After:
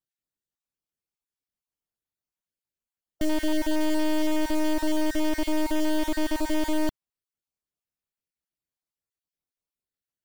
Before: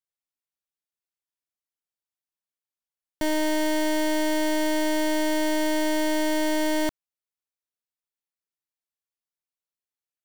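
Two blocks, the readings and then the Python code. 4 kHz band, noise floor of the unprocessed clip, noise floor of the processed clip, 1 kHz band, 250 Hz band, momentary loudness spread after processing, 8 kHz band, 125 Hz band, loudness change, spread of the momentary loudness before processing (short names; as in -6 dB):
-4.5 dB, under -85 dBFS, under -85 dBFS, -4.5 dB, -0.5 dB, 3 LU, -5.5 dB, n/a, -2.5 dB, 2 LU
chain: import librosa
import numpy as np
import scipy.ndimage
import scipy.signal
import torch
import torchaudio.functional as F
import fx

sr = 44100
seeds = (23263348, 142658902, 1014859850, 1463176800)

p1 = fx.spec_dropout(x, sr, seeds[0], share_pct=23)
p2 = fx.low_shelf(p1, sr, hz=410.0, db=11.0)
p3 = (np.mod(10.0 ** (27.5 / 20.0) * p2 + 1.0, 2.0) - 1.0) / 10.0 ** (27.5 / 20.0)
p4 = p2 + (p3 * 10.0 ** (-3.0 / 20.0))
y = p4 * 10.0 ** (-6.5 / 20.0)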